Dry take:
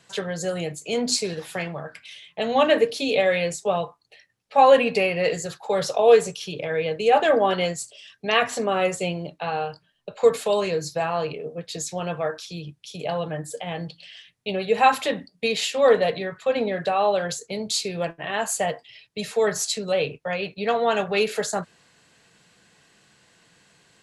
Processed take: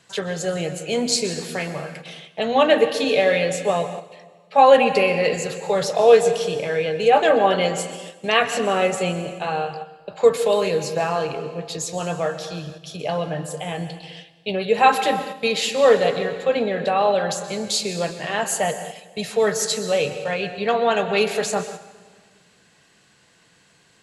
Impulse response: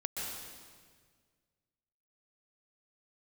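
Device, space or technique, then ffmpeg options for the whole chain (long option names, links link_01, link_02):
keyed gated reverb: -filter_complex "[0:a]asplit=3[link_01][link_02][link_03];[1:a]atrim=start_sample=2205[link_04];[link_02][link_04]afir=irnorm=-1:irlink=0[link_05];[link_03]apad=whole_len=1059599[link_06];[link_05][link_06]sidechaingate=range=-7dB:threshold=-45dB:ratio=16:detection=peak,volume=-8.5dB[link_07];[link_01][link_07]amix=inputs=2:normalize=0"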